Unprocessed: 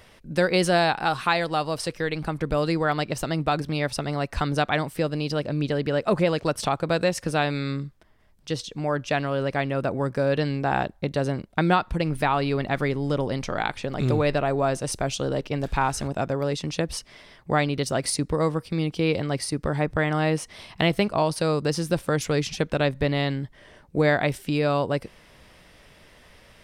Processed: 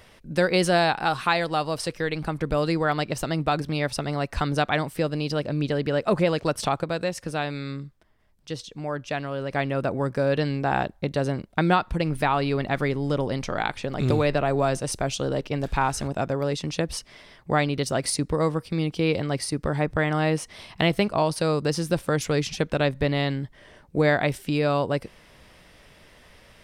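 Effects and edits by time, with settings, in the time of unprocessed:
6.84–9.51 gain -4.5 dB
14.1–14.8 three-band squash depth 70%

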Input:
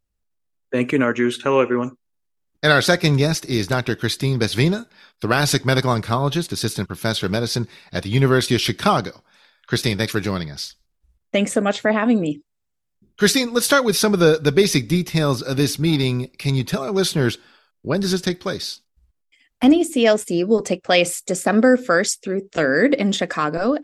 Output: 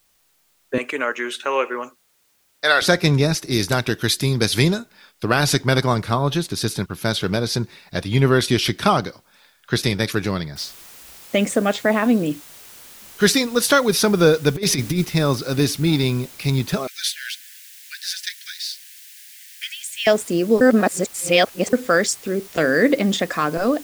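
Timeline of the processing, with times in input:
0.78–2.82 HPF 590 Hz
3.51–4.78 high shelf 4400 Hz +8.5 dB
10.56 noise floor step -63 dB -43 dB
14.55–15.05 negative-ratio compressor -19 dBFS, ratio -0.5
16.87–20.07 steep high-pass 1600 Hz 72 dB/oct
20.61–21.73 reverse

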